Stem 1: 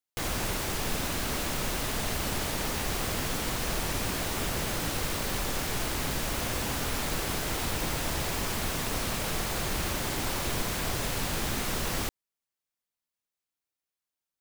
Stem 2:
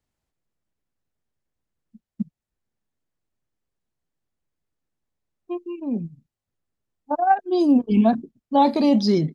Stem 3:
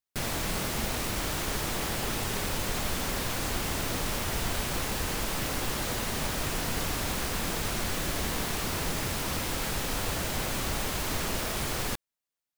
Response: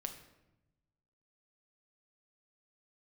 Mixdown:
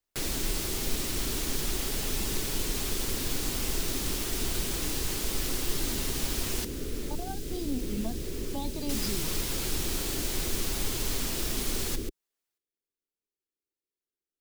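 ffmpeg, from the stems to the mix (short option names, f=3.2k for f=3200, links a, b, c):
-filter_complex "[0:a]lowshelf=f=560:t=q:w=3:g=12,volume=-8.5dB[a];[1:a]volume=-8.5dB[b];[2:a]aecho=1:1:7.4:0.35,volume=1dB,asplit=3[c][d][e];[c]atrim=end=6.65,asetpts=PTS-STARTPTS,afade=t=out:st=6.646:d=0.004:c=hsin[f];[d]atrim=start=6.65:end=8.89,asetpts=PTS-STARTPTS,volume=0[g];[e]atrim=start=8.89,asetpts=PTS-STARTPTS,afade=t=in:d=0.004:c=hsin[h];[f][g][h]concat=n=3:v=0:a=1[i];[a][b][i]amix=inputs=3:normalize=0,equalizer=f=130:w=0.6:g=-10.5,acrossover=split=280|3000[j][k][l];[k]acompressor=threshold=-41dB:ratio=6[m];[j][m][l]amix=inputs=3:normalize=0"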